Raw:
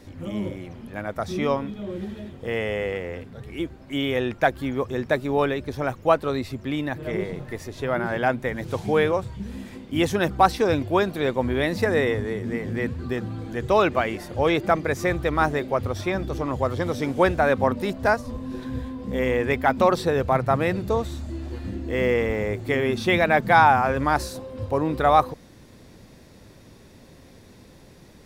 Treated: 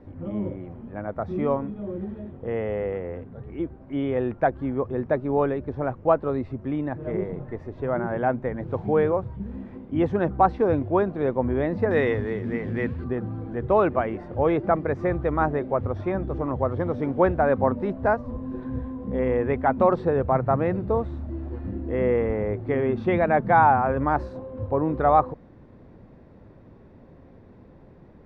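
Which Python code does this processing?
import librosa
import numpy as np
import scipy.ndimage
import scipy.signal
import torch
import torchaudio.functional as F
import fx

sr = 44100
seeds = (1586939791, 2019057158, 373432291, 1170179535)

y = fx.lowpass(x, sr, hz=fx.steps((0.0, 1100.0), (11.91, 2500.0), (13.04, 1200.0)), slope=12)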